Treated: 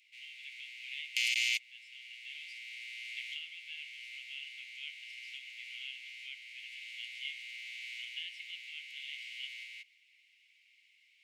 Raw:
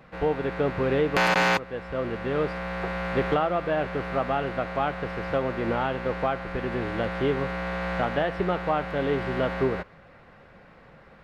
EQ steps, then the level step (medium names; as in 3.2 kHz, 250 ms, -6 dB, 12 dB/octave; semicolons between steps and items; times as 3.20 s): rippled Chebyshev high-pass 2.1 kHz, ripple 6 dB; +2.0 dB